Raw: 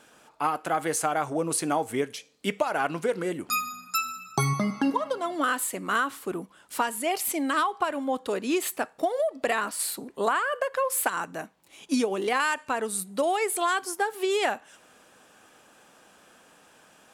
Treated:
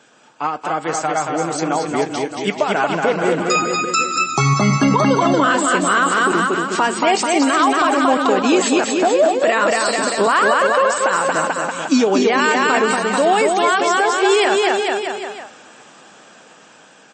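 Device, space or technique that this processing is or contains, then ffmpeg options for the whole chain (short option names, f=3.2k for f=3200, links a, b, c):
low-bitrate web radio: -af "highpass=f=110:w=0.5412,highpass=f=110:w=1.3066,aecho=1:1:230|437|623.3|791|941.9:0.631|0.398|0.251|0.158|0.1,dynaudnorm=f=780:g=9:m=16dB,alimiter=limit=-10.5dB:level=0:latency=1:release=27,volume=5dB" -ar 24000 -c:a libmp3lame -b:a 32k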